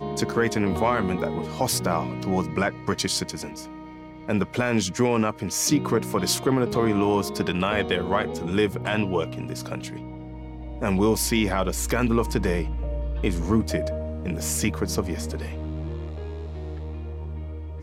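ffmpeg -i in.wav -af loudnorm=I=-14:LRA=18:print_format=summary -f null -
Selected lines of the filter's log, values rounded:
Input Integrated:    -26.0 LUFS
Input True Peak:     -10.1 dBTP
Input LRA:             8.7 LU
Input Threshold:     -36.3 LUFS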